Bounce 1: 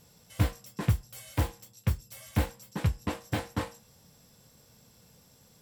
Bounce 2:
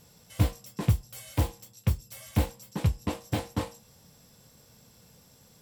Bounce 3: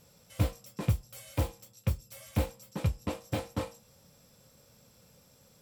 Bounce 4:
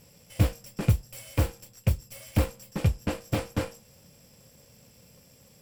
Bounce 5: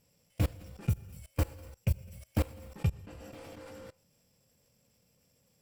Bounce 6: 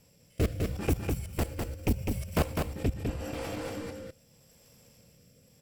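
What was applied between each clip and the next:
dynamic bell 1.6 kHz, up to -7 dB, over -55 dBFS, Q 1.5; trim +2 dB
small resonant body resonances 550/1300/2400 Hz, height 8 dB; trim -4 dB
comb filter that takes the minimum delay 0.38 ms; trim +5.5 dB
spectral noise reduction 6 dB; gated-style reverb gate 320 ms flat, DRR 9 dB; level held to a coarse grid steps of 23 dB; trim -1.5 dB
sine folder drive 11 dB, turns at -15.5 dBFS; rotary cabinet horn 0.8 Hz; delay 203 ms -4 dB; trim -3.5 dB

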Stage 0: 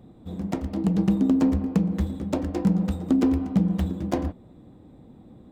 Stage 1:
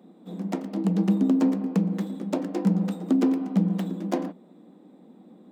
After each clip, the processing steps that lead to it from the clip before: elliptic high-pass 180 Hz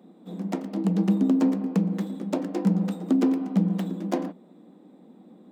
no audible change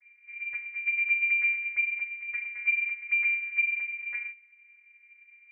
vocoder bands 16, saw 227 Hz; frequency inversion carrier 2.6 kHz; trim -3.5 dB

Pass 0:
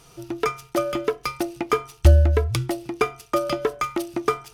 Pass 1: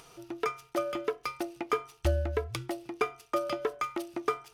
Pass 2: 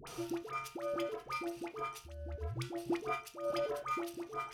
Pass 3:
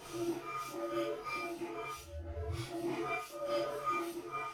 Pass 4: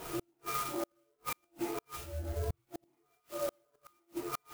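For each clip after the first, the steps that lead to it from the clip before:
tone controls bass -9 dB, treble -4 dB; upward compressor, threshold -41 dBFS; trim -7 dB
compressor with a negative ratio -38 dBFS, ratio -1; random-step tremolo; phase dispersion highs, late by 73 ms, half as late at 890 Hz; trim +2.5 dB
phase randomisation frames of 200 ms; trim +1 dB
inverted gate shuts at -31 dBFS, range -42 dB; sampling jitter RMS 0.065 ms; trim +5.5 dB

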